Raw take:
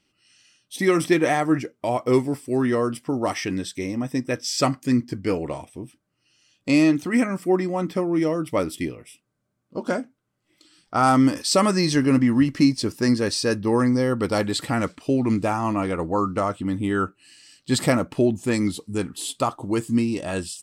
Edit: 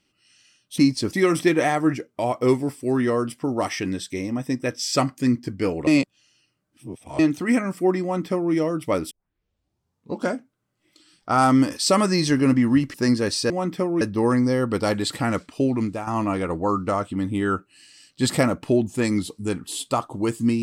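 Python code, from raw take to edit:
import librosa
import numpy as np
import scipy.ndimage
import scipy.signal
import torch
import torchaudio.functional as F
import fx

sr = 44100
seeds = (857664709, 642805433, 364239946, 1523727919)

y = fx.edit(x, sr, fx.reverse_span(start_s=5.52, length_s=1.32),
    fx.duplicate(start_s=7.67, length_s=0.51, to_s=13.5),
    fx.tape_start(start_s=8.76, length_s=1.12),
    fx.move(start_s=12.59, length_s=0.35, to_s=0.78),
    fx.fade_out_to(start_s=15.15, length_s=0.41, floor_db=-10.5), tone=tone)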